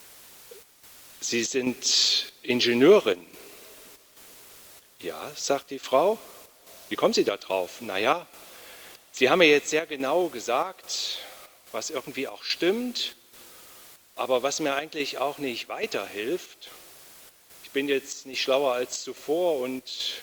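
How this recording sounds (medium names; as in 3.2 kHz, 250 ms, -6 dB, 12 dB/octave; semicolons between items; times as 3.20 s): a quantiser's noise floor 8-bit, dither triangular; chopped level 1.2 Hz, depth 60%, duty 75%; Opus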